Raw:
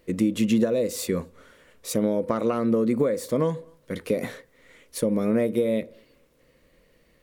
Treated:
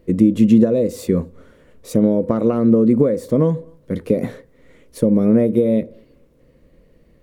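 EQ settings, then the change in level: tilt shelf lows +8 dB, about 700 Hz; +3.5 dB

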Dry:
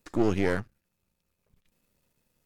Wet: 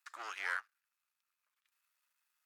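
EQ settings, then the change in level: ladder high-pass 1.1 kHz, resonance 45%; +2.5 dB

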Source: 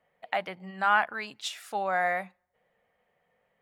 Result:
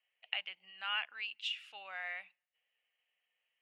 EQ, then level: band-pass filter 2.8 kHz, Q 8.8; +7.0 dB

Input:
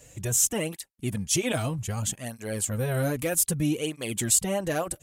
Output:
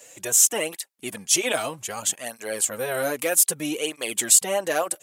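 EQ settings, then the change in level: high-pass 470 Hz 12 dB/octave; +6.0 dB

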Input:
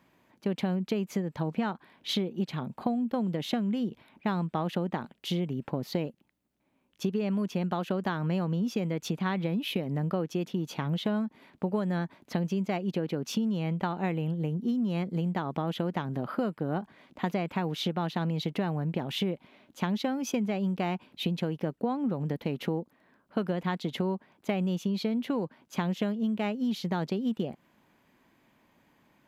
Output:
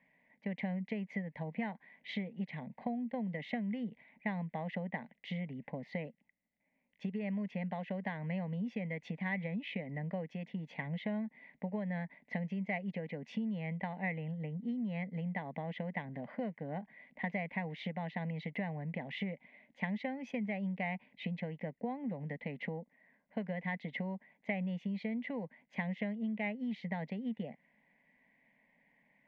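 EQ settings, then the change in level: resonant low-pass 2 kHz, resonance Q 12; static phaser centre 350 Hz, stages 6; -7.5 dB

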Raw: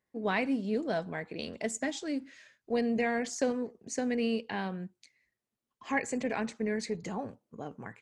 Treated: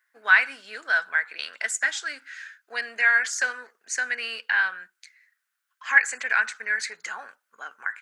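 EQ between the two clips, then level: resonant high-pass 1.5 kHz, resonance Q 6.5; treble shelf 8.3 kHz +6 dB; +6.5 dB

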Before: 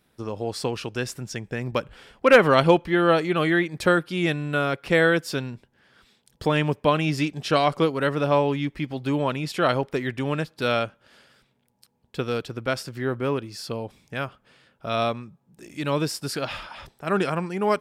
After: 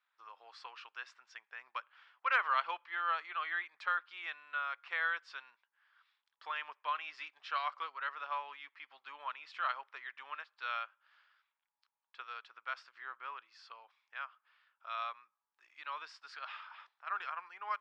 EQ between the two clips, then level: ladder band-pass 1.3 kHz, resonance 50%; distance through air 160 m; differentiator; +13.0 dB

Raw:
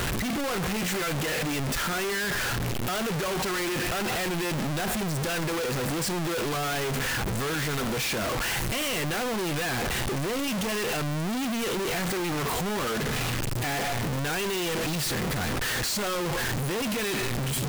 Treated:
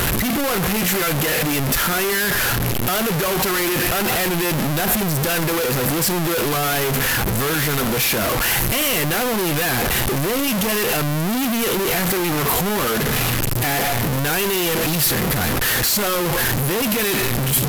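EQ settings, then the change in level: peaking EQ 12 kHz +13.5 dB 0.29 oct; +8.0 dB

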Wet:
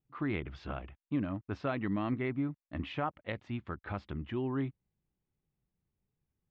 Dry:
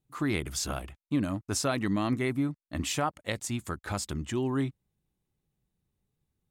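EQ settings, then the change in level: low-pass 3.1 kHz 24 dB/octave; distance through air 97 m; -4.5 dB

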